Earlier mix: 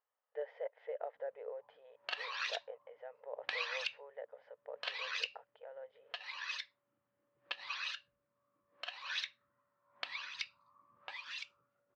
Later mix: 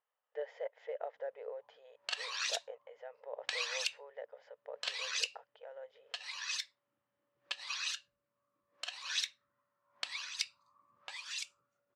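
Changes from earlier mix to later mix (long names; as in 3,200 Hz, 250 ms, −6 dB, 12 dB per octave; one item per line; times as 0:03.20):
background −3.5 dB
master: remove high-frequency loss of the air 290 metres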